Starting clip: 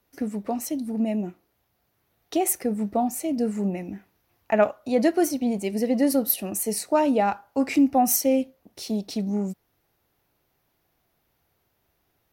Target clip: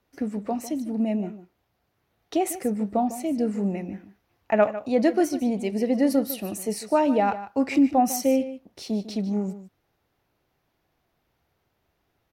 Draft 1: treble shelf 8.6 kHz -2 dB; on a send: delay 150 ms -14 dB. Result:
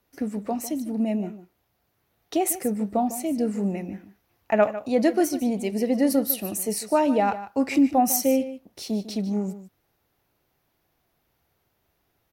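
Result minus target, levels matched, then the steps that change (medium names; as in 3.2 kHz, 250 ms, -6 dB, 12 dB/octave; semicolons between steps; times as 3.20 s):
8 kHz band +5.0 dB
change: treble shelf 8.6 kHz -13.5 dB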